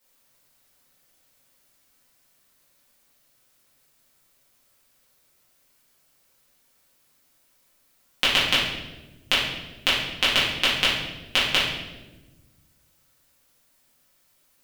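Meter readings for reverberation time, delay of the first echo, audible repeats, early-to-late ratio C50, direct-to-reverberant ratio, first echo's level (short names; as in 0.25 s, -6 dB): 1.2 s, none, none, 1.5 dB, -10.5 dB, none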